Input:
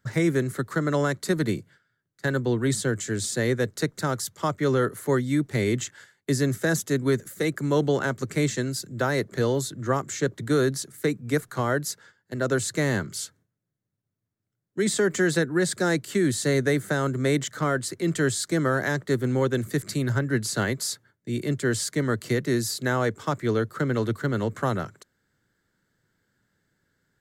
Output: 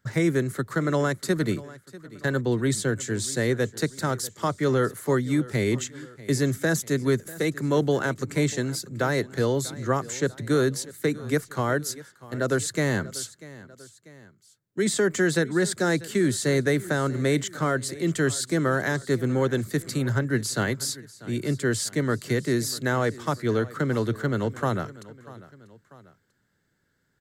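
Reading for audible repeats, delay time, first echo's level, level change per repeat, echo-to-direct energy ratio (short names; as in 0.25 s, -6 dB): 2, 0.642 s, -19.0 dB, -6.0 dB, -18.0 dB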